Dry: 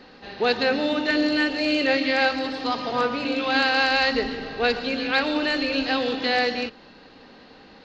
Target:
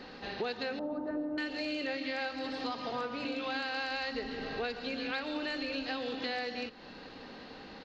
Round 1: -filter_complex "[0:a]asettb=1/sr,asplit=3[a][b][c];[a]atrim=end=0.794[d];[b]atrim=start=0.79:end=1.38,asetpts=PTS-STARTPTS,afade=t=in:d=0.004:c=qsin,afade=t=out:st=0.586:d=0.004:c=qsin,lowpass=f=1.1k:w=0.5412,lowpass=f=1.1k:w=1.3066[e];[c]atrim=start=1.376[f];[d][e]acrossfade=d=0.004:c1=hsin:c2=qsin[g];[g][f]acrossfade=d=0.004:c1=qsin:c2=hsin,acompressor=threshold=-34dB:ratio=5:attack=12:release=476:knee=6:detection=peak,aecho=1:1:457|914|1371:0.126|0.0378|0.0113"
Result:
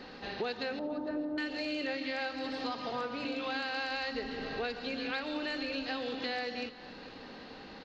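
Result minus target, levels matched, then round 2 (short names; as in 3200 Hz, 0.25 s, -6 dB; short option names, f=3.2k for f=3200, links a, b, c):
echo-to-direct +10 dB
-filter_complex "[0:a]asettb=1/sr,asplit=3[a][b][c];[a]atrim=end=0.794[d];[b]atrim=start=0.79:end=1.38,asetpts=PTS-STARTPTS,afade=t=in:d=0.004:c=qsin,afade=t=out:st=0.586:d=0.004:c=qsin,lowpass=f=1.1k:w=0.5412,lowpass=f=1.1k:w=1.3066[e];[c]atrim=start=1.376[f];[d][e]acrossfade=d=0.004:c1=hsin:c2=qsin[g];[g][f]acrossfade=d=0.004:c1=qsin:c2=hsin,acompressor=threshold=-34dB:ratio=5:attack=12:release=476:knee=6:detection=peak,aecho=1:1:457|914:0.0398|0.0119"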